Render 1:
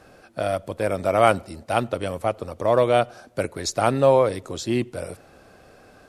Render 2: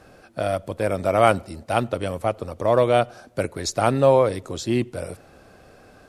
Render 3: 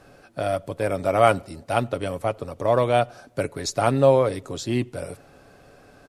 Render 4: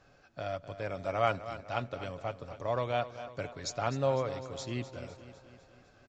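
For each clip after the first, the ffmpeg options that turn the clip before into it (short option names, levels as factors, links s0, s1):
-af "lowshelf=f=220:g=3"
-af "aecho=1:1:7.1:0.3,volume=0.841"
-filter_complex "[0:a]equalizer=f=340:w=0.68:g=-6,asplit=2[s0][s1];[s1]aecho=0:1:252|504|756|1008|1260|1512:0.224|0.13|0.0753|0.0437|0.0253|0.0147[s2];[s0][s2]amix=inputs=2:normalize=0,aresample=16000,aresample=44100,volume=0.355"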